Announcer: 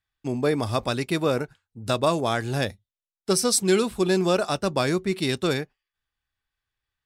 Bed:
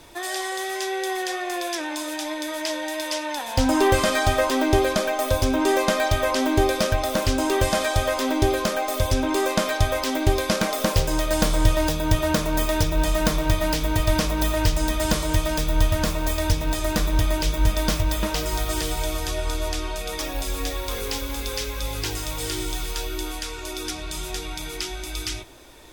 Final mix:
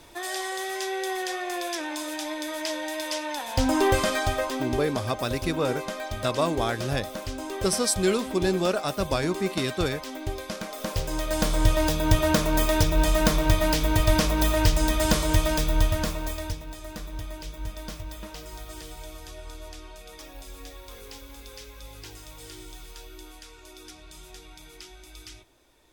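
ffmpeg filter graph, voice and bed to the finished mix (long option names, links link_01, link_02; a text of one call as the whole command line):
ffmpeg -i stem1.wav -i stem2.wav -filter_complex "[0:a]adelay=4350,volume=-3dB[link_01];[1:a]volume=9dB,afade=type=out:start_time=3.95:duration=0.88:silence=0.354813,afade=type=in:start_time=10.69:duration=1.43:silence=0.251189,afade=type=out:start_time=15.48:duration=1.18:silence=0.177828[link_02];[link_01][link_02]amix=inputs=2:normalize=0" out.wav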